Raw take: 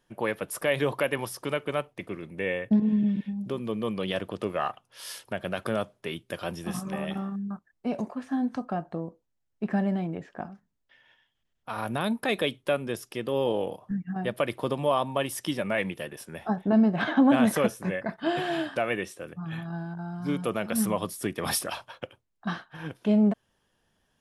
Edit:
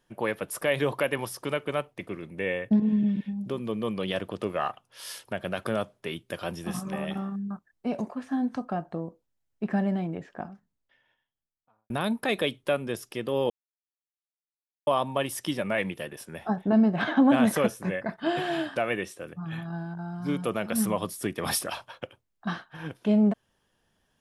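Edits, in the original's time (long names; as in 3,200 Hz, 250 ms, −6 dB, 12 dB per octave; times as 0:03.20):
0:10.29–0:11.90: fade out and dull
0:13.50–0:14.87: silence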